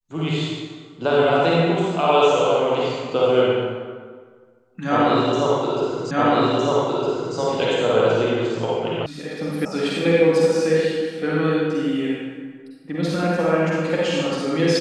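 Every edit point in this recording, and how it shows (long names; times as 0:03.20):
0:06.11: the same again, the last 1.26 s
0:09.06: cut off before it has died away
0:09.65: cut off before it has died away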